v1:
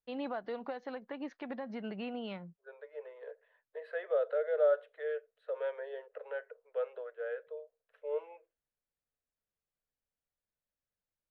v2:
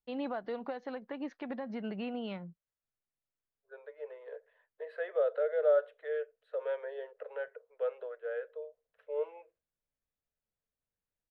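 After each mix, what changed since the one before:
second voice: entry +1.05 s
master: add low-shelf EQ 380 Hz +3.5 dB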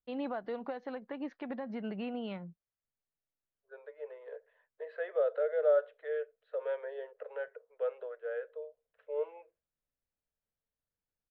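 master: add high-frequency loss of the air 97 metres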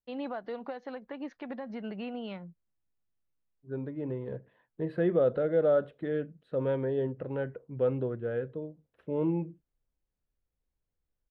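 second voice: remove Chebyshev high-pass with heavy ripple 430 Hz, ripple 6 dB
master: remove high-frequency loss of the air 97 metres

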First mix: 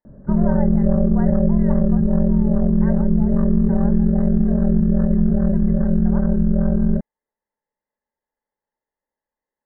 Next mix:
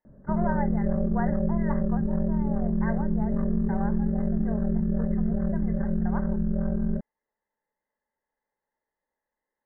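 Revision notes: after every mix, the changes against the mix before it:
background −9.5 dB
master: remove high-frequency loss of the air 450 metres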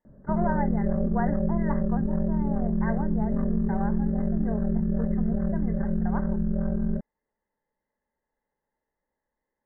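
speech: add low-shelf EQ 360 Hz +10 dB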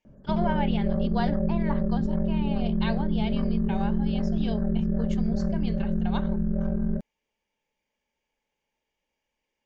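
master: remove linear-phase brick-wall low-pass 2,100 Hz

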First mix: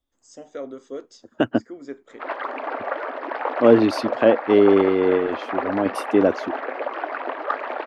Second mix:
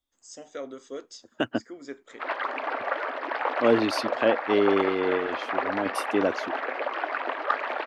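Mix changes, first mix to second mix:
second voice −3.5 dB
master: add tilt shelving filter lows −5 dB, about 1,300 Hz

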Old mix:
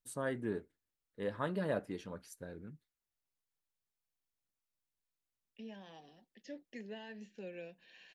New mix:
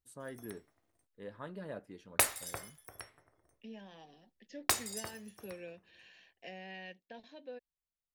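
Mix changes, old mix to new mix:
first voice −8.5 dB
second voice: entry −1.95 s
background: unmuted

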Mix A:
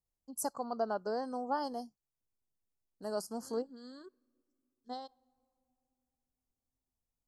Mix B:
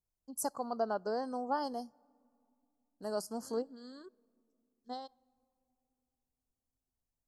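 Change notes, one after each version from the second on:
first voice: send on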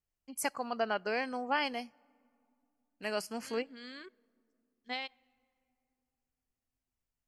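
master: remove Butterworth band-reject 2,400 Hz, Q 0.59

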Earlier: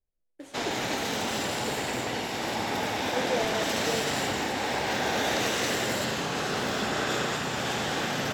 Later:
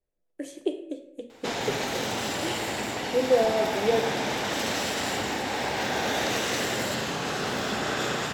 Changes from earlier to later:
first voice +9.0 dB
background: entry +0.90 s

